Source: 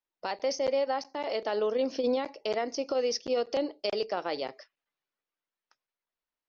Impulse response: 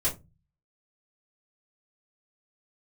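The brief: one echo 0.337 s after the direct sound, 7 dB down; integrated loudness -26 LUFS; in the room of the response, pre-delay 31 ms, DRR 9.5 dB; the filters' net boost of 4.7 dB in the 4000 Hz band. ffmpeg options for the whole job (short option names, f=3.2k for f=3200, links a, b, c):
-filter_complex "[0:a]equalizer=f=4k:t=o:g=6.5,aecho=1:1:337:0.447,asplit=2[a][b];[1:a]atrim=start_sample=2205,adelay=31[c];[b][c]afir=irnorm=-1:irlink=0,volume=-17dB[d];[a][d]amix=inputs=2:normalize=0,volume=3dB"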